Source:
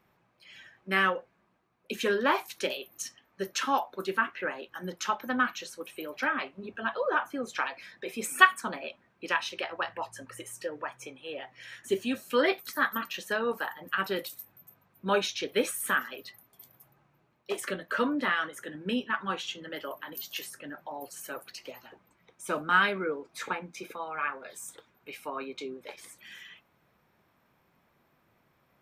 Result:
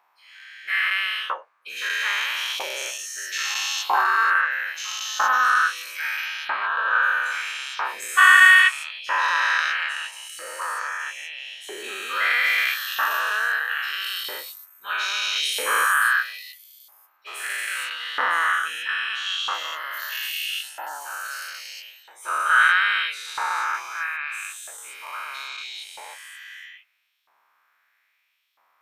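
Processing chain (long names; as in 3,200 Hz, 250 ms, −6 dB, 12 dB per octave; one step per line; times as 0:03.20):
every bin's largest magnitude spread in time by 480 ms
auto-filter high-pass saw up 0.77 Hz 850–3,500 Hz
level −4 dB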